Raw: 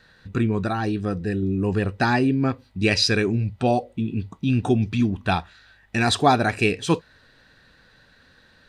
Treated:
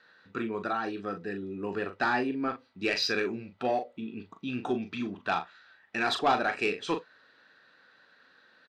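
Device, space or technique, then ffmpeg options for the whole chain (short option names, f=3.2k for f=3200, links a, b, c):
intercom: -filter_complex "[0:a]highpass=320,lowpass=4.6k,equalizer=f=1.3k:t=o:w=0.43:g=5.5,asoftclip=type=tanh:threshold=-11dB,asplit=2[a][b];[b]adelay=40,volume=-8dB[c];[a][c]amix=inputs=2:normalize=0,volume=-6dB"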